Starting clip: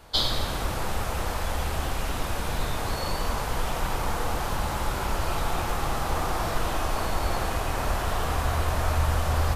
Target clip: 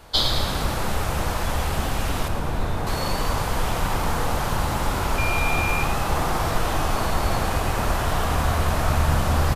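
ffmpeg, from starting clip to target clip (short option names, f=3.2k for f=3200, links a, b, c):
-filter_complex "[0:a]asettb=1/sr,asplit=3[a][b][c];[a]atrim=end=2.284[d];[b]atrim=start=2.28:end=2.87,asetpts=PTS-STARTPTS,afade=t=in:d=0.004:c=qsin,afade=t=out:st=0.586:d=0.004:c=qsin,highshelf=f=2k:g=-10.5[e];[c]atrim=start=2.866[f];[d][e]acrossfade=d=0.004:c1=hsin:c2=qsin[g];[g][f]acrossfade=d=0.004:c1=qsin:c2=hsin,asettb=1/sr,asplit=3[h][i][j];[h]atrim=end=5.184[k];[i]atrim=start=5.18:end=5.83,asetpts=PTS-STARTPTS,afade=t=in:d=0.004:c=qsin,afade=t=out:st=0.646:d=0.004:c=qsin,aeval=exprs='val(0)+0.0355*sin(2*PI*2400*n/s)':c=same[l];[j]atrim=start=5.826[m];[k][l]acrossfade=d=0.004:c1=hsin:c2=qsin[n];[n][m]acrossfade=d=0.004:c1=qsin:c2=hsin,asplit=8[o][p][q][r][s][t][u][v];[p]adelay=108,afreqshift=68,volume=-11dB[w];[q]adelay=216,afreqshift=136,volume=-15.7dB[x];[r]adelay=324,afreqshift=204,volume=-20.5dB[y];[s]adelay=432,afreqshift=272,volume=-25.2dB[z];[t]adelay=540,afreqshift=340,volume=-29.9dB[aa];[u]adelay=648,afreqshift=408,volume=-34.7dB[ab];[v]adelay=756,afreqshift=476,volume=-39.4dB[ac];[o][w][x][y][z][aa][ab][ac]amix=inputs=8:normalize=0,volume=3.5dB"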